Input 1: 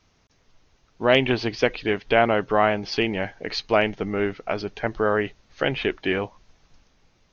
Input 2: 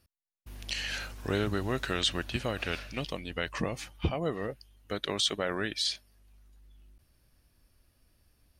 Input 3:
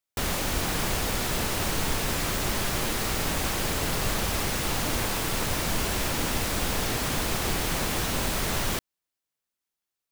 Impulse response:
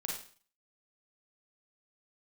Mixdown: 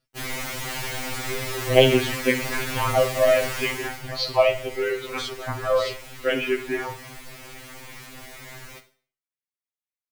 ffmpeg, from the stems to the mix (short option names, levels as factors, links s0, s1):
-filter_complex "[0:a]asplit=2[s0][s1];[s1]afreqshift=-0.72[s2];[s0][s2]amix=inputs=2:normalize=1,adelay=650,volume=1.12,asplit=2[s3][s4];[s4]volume=0.531[s5];[1:a]lowpass=7700,volume=0.75[s6];[2:a]equalizer=f=2100:w=2.5:g=7.5,aeval=exprs='0.0841*(abs(mod(val(0)/0.0841+3,4)-2)-1)':c=same,volume=0.708,afade=t=out:st=3.61:d=0.42:silence=0.266073,asplit=2[s7][s8];[s8]volume=0.376[s9];[3:a]atrim=start_sample=2205[s10];[s5][s9]amix=inputs=2:normalize=0[s11];[s11][s10]afir=irnorm=-1:irlink=0[s12];[s3][s6][s7][s12]amix=inputs=4:normalize=0,afftfilt=real='re*2.45*eq(mod(b,6),0)':imag='im*2.45*eq(mod(b,6),0)':win_size=2048:overlap=0.75"